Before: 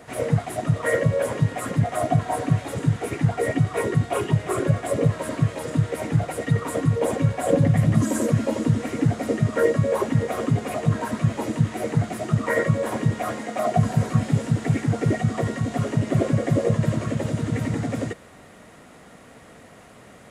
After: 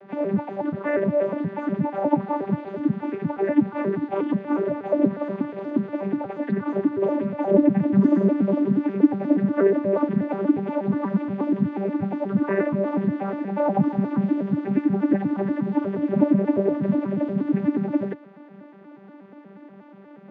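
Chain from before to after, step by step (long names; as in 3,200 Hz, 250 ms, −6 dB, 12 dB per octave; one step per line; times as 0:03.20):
vocoder with an arpeggio as carrier bare fifth, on G3, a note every 120 ms
high-frequency loss of the air 320 metres
level +1.5 dB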